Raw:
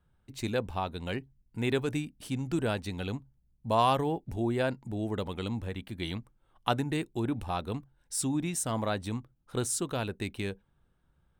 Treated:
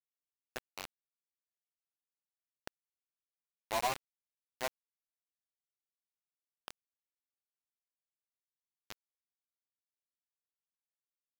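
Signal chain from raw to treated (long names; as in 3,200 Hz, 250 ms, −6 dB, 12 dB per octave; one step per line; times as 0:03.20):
band-pass filter sweep 710 Hz → 2,000 Hz, 0:03.94–0:06.69
multi-voice chorus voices 6, 0.18 Hz, delay 12 ms, depth 4.3 ms
bit reduction 5 bits
level −3 dB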